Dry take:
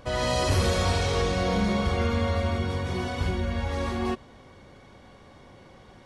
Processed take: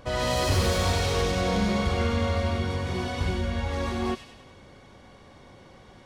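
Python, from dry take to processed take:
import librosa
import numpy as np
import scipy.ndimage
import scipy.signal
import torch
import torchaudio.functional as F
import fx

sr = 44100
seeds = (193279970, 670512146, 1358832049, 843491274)

y = fx.self_delay(x, sr, depth_ms=0.057)
y = fx.echo_wet_highpass(y, sr, ms=98, feedback_pct=53, hz=2800.0, wet_db=-4)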